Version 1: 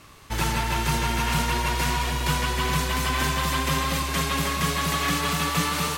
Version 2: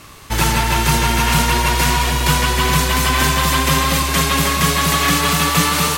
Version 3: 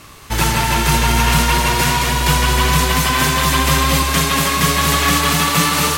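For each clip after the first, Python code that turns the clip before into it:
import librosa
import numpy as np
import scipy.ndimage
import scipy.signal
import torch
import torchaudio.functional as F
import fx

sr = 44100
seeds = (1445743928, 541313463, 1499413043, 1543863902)

y1 = fx.high_shelf(x, sr, hz=6300.0, db=4.0)
y1 = y1 * 10.0 ** (8.5 / 20.0)
y2 = y1 + 10.0 ** (-7.5 / 20.0) * np.pad(y1, (int(220 * sr / 1000.0), 0))[:len(y1)]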